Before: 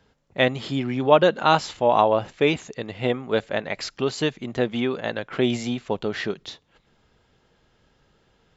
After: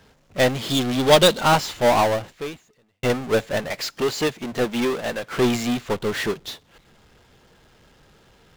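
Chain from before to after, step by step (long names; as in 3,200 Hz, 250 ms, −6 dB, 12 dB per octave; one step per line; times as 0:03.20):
0:00.70–0:01.41: high shelf with overshoot 2,800 Hz +8.5 dB, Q 3
0:03.67–0:05.36: high-pass filter 170 Hz 6 dB per octave
power curve on the samples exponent 0.35
0:01.96–0:03.03: fade out
expander for the loud parts 2.5 to 1, over −25 dBFS
level −4 dB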